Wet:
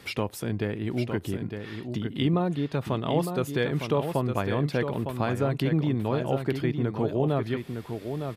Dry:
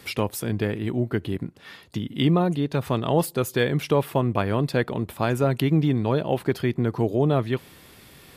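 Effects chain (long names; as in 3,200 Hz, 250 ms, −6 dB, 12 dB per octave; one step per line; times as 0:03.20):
high-shelf EQ 7,900 Hz −8.5 dB
in parallel at +0.5 dB: downward compressor, threshold −28 dBFS, peak gain reduction 12.5 dB
on the sum: single-tap delay 908 ms −7 dB
level −7 dB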